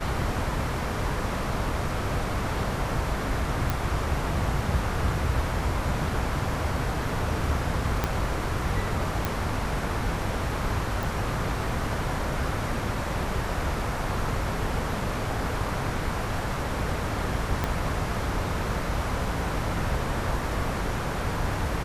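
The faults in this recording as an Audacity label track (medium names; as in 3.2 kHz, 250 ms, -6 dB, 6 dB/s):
3.700000	3.700000	pop
8.040000	8.040000	pop -10 dBFS
9.250000	9.250000	pop
11.030000	11.030000	pop
17.640000	17.640000	pop -12 dBFS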